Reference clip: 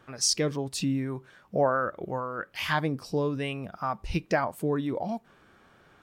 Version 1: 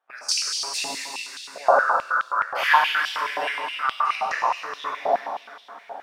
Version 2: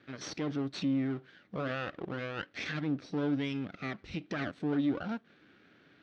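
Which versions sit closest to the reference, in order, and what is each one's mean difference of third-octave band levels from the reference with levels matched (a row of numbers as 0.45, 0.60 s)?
2, 1; 6.5, 14.5 dB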